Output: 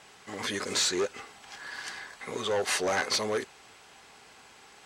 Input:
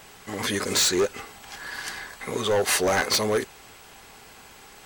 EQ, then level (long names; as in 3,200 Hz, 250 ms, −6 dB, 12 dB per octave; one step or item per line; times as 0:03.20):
high-pass filter 100 Hz 6 dB per octave
low-pass filter 8,200 Hz 12 dB per octave
low-shelf EQ 380 Hz −3.5 dB
−4.5 dB